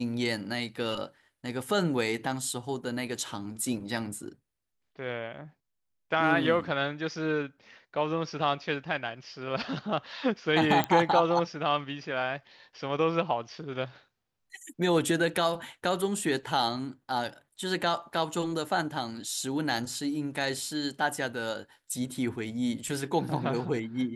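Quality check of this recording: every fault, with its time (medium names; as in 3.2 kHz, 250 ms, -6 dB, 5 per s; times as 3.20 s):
10.84 s: pop -12 dBFS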